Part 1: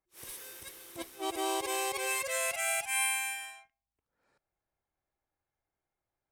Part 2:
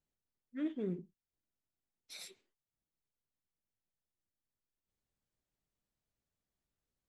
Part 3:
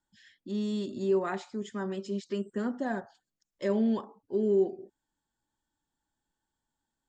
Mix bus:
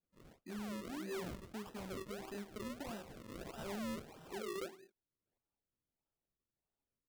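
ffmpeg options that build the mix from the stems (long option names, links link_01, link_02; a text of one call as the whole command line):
ffmpeg -i stem1.wav -i stem2.wav -i stem3.wav -filter_complex "[0:a]acompressor=threshold=-36dB:ratio=10,adelay=1000,volume=-3dB[link_01];[1:a]lowpass=1100,adelay=350,volume=-3dB[link_02];[2:a]flanger=delay=17:depth=6.3:speed=0.74,lowpass=frequency=2600:width_type=q:width=11,volume=-5dB,asplit=2[link_03][link_04];[link_04]apad=whole_len=322659[link_05];[link_01][link_05]sidechaincompress=threshold=-46dB:ratio=16:attack=16:release=937[link_06];[link_06][link_02][link_03]amix=inputs=3:normalize=0,acrusher=samples=39:mix=1:aa=0.000001:lfo=1:lforange=39:lforate=1.6,asoftclip=type=hard:threshold=-30.5dB,alimiter=level_in=14.5dB:limit=-24dB:level=0:latency=1:release=147,volume=-14.5dB" out.wav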